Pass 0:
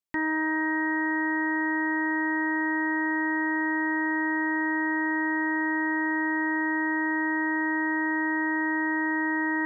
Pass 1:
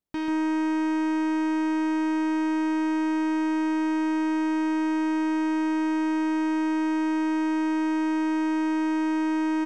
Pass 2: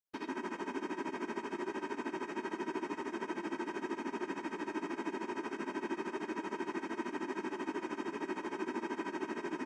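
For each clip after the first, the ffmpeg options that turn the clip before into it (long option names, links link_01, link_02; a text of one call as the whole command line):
ffmpeg -i in.wav -af "tiltshelf=frequency=740:gain=8,asoftclip=type=tanh:threshold=-33dB,aecho=1:1:140:0.531,volume=5.5dB" out.wav
ffmpeg -i in.wav -af "tremolo=f=13:d=0.84,afftfilt=real='hypot(re,im)*cos(2*PI*random(0))':imag='hypot(re,im)*sin(2*PI*random(1))':win_size=512:overlap=0.75,highpass=frequency=610:poles=1,volume=1dB" out.wav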